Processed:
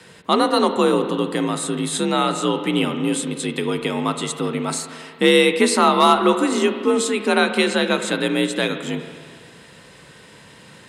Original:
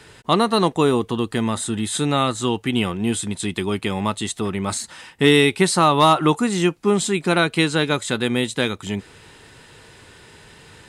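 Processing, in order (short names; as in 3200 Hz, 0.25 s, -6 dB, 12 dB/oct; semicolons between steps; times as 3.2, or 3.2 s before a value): spring tank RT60 2 s, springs 32/47 ms, chirp 40 ms, DRR 7.5 dB; frequency shift +52 Hz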